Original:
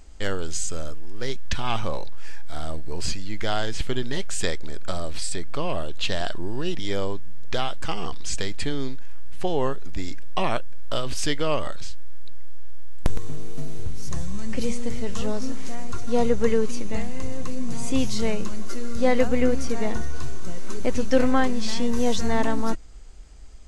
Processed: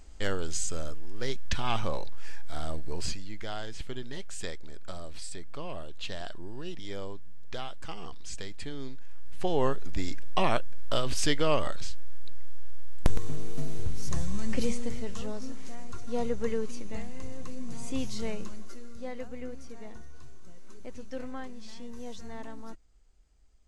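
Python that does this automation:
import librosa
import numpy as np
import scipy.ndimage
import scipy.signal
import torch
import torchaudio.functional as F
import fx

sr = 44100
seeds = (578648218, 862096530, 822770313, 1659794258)

y = fx.gain(x, sr, db=fx.line((2.91, -3.5), (3.47, -11.5), (8.7, -11.5), (9.69, -1.5), (14.52, -1.5), (15.28, -9.5), (18.44, -9.5), (19.1, -19.0)))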